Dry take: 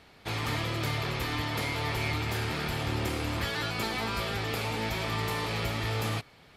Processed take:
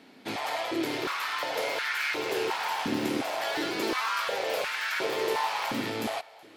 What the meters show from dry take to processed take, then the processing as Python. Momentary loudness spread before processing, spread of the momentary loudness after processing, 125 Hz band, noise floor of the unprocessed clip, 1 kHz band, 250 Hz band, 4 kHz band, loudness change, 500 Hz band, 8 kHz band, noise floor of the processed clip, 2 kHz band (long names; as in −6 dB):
1 LU, 3 LU, −16.5 dB, −56 dBFS, +4.0 dB, +2.0 dB, +0.5 dB, +1.5 dB, +5.0 dB, +1.5 dB, −52 dBFS, +2.5 dB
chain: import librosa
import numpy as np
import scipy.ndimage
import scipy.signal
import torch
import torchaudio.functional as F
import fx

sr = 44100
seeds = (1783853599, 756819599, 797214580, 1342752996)

p1 = fx.diode_clip(x, sr, knee_db=-26.0)
p2 = fx.echo_pitch(p1, sr, ms=683, semitones=3, count=2, db_per_echo=-6.0)
p3 = fx.notch(p2, sr, hz=1200.0, q=12.0)
p4 = p3 + fx.echo_single(p3, sr, ms=373, db=-23.5, dry=0)
y = fx.filter_held_highpass(p4, sr, hz=2.8, low_hz=250.0, high_hz=1500.0)